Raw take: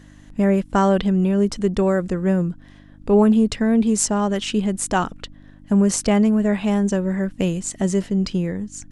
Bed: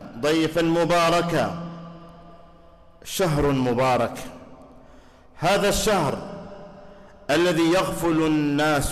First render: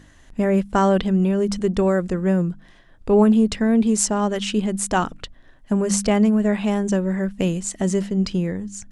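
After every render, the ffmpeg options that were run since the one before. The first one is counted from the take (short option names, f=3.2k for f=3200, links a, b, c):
-af "bandreject=f=50:t=h:w=4,bandreject=f=100:t=h:w=4,bandreject=f=150:t=h:w=4,bandreject=f=200:t=h:w=4,bandreject=f=250:t=h:w=4,bandreject=f=300:t=h:w=4"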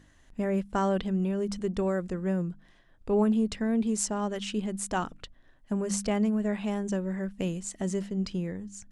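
-af "volume=-9.5dB"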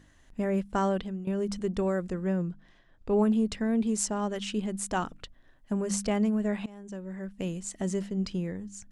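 -filter_complex "[0:a]asettb=1/sr,asplit=3[a][b][c];[a]atrim=end=2.274[d];[b]atrim=start=2.27:end=3.11,asetpts=PTS-STARTPTS,afade=t=in:d=0.004:c=qsin,afade=t=out:st=0.836:d=0.004:c=qsin,lowpass=7k[e];[c]atrim=start=3.106[f];[d][e]acrossfade=d=0.004:c1=hsin:c2=qsin[g];[g][f]acrossfade=d=0.004:c1=qsin:c2=hsin,asplit=3[h][i][j];[h]atrim=end=1.27,asetpts=PTS-STARTPTS,afade=t=out:st=0.86:d=0.41:silence=0.188365[k];[i]atrim=start=1.27:end=6.66,asetpts=PTS-STARTPTS,afade=t=in:d=0.004:c=hsin:silence=0.188365,afade=t=out:st=5.386:d=0.004:c=hsin:silence=0.0891251[l];[j]atrim=start=6.66,asetpts=PTS-STARTPTS,afade=t=in:d=1.08:silence=0.0891251[m];[k][l][m]concat=n=3:v=0:a=1"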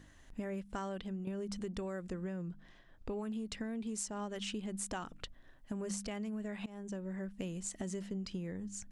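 -filter_complex "[0:a]acrossover=split=1400[a][b];[a]alimiter=level_in=1dB:limit=-24dB:level=0:latency=1:release=257,volume=-1dB[c];[c][b]amix=inputs=2:normalize=0,acompressor=threshold=-37dB:ratio=6"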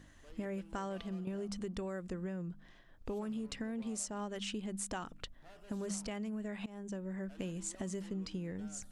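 -filter_complex "[1:a]volume=-39dB[a];[0:a][a]amix=inputs=2:normalize=0"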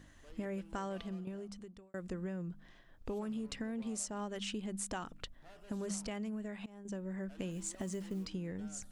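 -filter_complex "[0:a]asettb=1/sr,asplit=3[a][b][c];[a]atrim=end=7.514[d];[b]atrim=start=7.51:end=8.27,asetpts=PTS-STARTPTS,afade=t=in:d=0.004:c=qsin,afade=t=out:st=0.756:d=0.004:c=qsin,acrusher=bits=7:mode=log:mix=0:aa=0.000001[e];[c]atrim=start=8.266[f];[d][e]acrossfade=d=0.004:c1=hsin:c2=qsin[g];[g][f]acrossfade=d=0.004:c1=qsin:c2=hsin,asplit=3[h][i][j];[h]atrim=end=1.94,asetpts=PTS-STARTPTS,afade=t=out:st=1:d=0.94[k];[i]atrim=start=1.94:end=6.85,asetpts=PTS-STARTPTS,afade=t=in:d=0.004:c=hsin,afade=t=out:st=4.35:d=0.56:silence=0.473151[l];[j]atrim=start=6.85,asetpts=PTS-STARTPTS,afade=t=in:d=0.004:c=hsin:silence=0.473151[m];[k][l][m]concat=n=3:v=0:a=1"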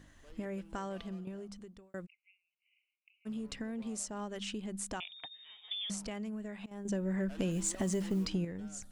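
-filter_complex "[0:a]asplit=3[a][b][c];[a]afade=t=out:st=2.05:d=0.02[d];[b]asuperpass=centerf=2500:order=20:qfactor=2.9,afade=t=in:st=2.05:d=0.02,afade=t=out:st=3.25:d=0.02[e];[c]afade=t=in:st=3.25:d=0.02[f];[d][e][f]amix=inputs=3:normalize=0,asettb=1/sr,asplit=3[g][h][i];[g]atrim=end=5.004[j];[h]atrim=start=5:end=5.9,asetpts=PTS-STARTPTS,afade=t=in:d=0.004:c=qsin,afade=t=out:st=0.896:d=0.004:c=qsin,lowpass=f=3.1k:t=q:w=0.5098,lowpass=f=3.1k:t=q:w=0.6013,lowpass=f=3.1k:t=q:w=0.9,lowpass=f=3.1k:t=q:w=2.563,afreqshift=-3700[k];[i]atrim=start=5.896[l];[j][k]acrossfade=d=0.004:c1=hsin:c2=qsin[m];[m][l]acrossfade=d=0.004:c1=qsin:c2=hsin,asettb=1/sr,asplit=3[n][o][p];[n]atrim=end=6.714[q];[o]atrim=start=6.71:end=8.45,asetpts=PTS-STARTPTS,afade=t=in:d=0.004:c=qsin,afade=t=out:st=1.736:d=0.004:c=qsin,aeval=exprs='0.0596*sin(PI/2*1.58*val(0)/0.0596)':c=same[r];[p]atrim=start=8.446[s];[q][r]acrossfade=d=0.004:c1=hsin:c2=qsin[t];[t][s]acrossfade=d=0.004:c1=qsin:c2=hsin"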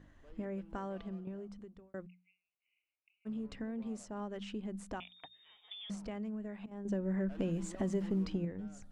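-af "lowpass=f=1.3k:p=1,bandreject=f=60:t=h:w=6,bandreject=f=120:t=h:w=6,bandreject=f=180:t=h:w=6,bandreject=f=240:t=h:w=6"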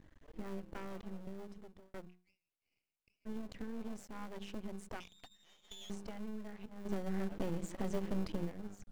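-filter_complex "[0:a]asplit=2[a][b];[b]acrusher=samples=34:mix=1:aa=0.000001,volume=-11.5dB[c];[a][c]amix=inputs=2:normalize=0,aeval=exprs='max(val(0),0)':c=same"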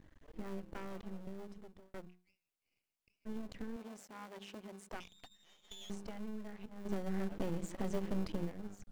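-filter_complex "[0:a]asettb=1/sr,asplit=3[a][b][c];[a]atrim=end=3.764[d];[b]atrim=start=3.76:end=4.93,asetpts=PTS-STARTPTS,afade=t=in:d=0.004:c=qsin,afade=t=out:st=1.166:d=0.004:c=qsin,highpass=f=370:p=1[e];[c]atrim=start=4.926[f];[d][e]acrossfade=d=0.004:c1=hsin:c2=qsin[g];[g][f]acrossfade=d=0.004:c1=qsin:c2=hsin"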